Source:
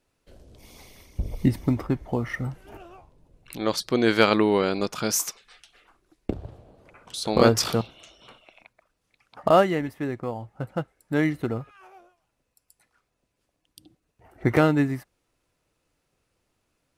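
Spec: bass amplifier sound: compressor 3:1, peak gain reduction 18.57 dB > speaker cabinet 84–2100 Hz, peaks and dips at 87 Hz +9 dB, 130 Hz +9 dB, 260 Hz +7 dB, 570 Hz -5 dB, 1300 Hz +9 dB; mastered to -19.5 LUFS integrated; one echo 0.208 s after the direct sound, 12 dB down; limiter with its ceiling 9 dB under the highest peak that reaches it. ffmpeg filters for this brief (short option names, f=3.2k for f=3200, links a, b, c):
-af "alimiter=limit=-12.5dB:level=0:latency=1,aecho=1:1:208:0.251,acompressor=threshold=-43dB:ratio=3,highpass=f=84:w=0.5412,highpass=f=84:w=1.3066,equalizer=f=87:t=q:w=4:g=9,equalizer=f=130:t=q:w=4:g=9,equalizer=f=260:t=q:w=4:g=7,equalizer=f=570:t=q:w=4:g=-5,equalizer=f=1.3k:t=q:w=4:g=9,lowpass=f=2.1k:w=0.5412,lowpass=f=2.1k:w=1.3066,volume=20.5dB"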